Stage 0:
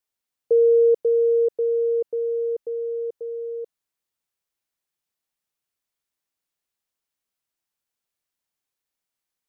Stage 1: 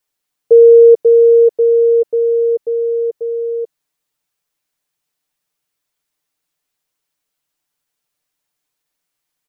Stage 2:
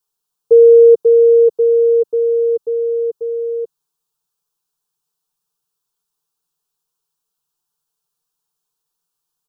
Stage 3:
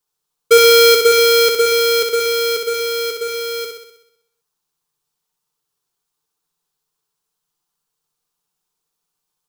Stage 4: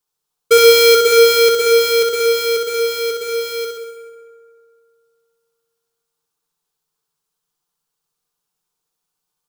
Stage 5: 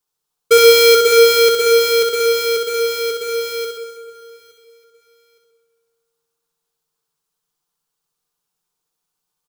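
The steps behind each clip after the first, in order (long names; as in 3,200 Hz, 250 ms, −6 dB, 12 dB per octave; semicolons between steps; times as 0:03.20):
comb filter 6.7 ms; level +7 dB
phaser with its sweep stopped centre 410 Hz, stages 8
each half-wave held at its own peak; on a send: flutter between parallel walls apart 10.9 metres, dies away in 0.78 s; on the sum: level −3.5 dB
convolution reverb RT60 2.4 s, pre-delay 113 ms, DRR 7 dB; level −1 dB
repeating echo 866 ms, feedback 31%, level −22.5 dB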